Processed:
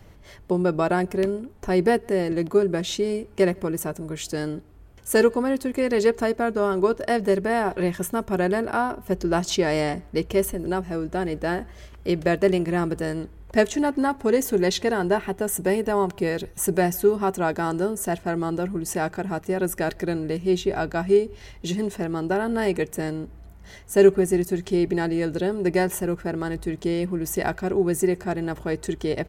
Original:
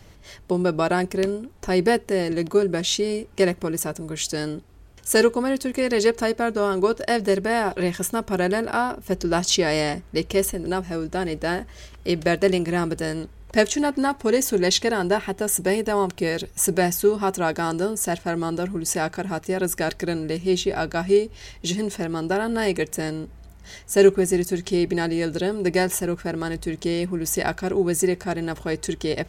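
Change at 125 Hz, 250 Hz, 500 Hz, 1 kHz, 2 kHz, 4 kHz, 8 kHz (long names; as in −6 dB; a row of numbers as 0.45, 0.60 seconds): 0.0, 0.0, 0.0, −0.5, −2.5, −6.5, −6.5 decibels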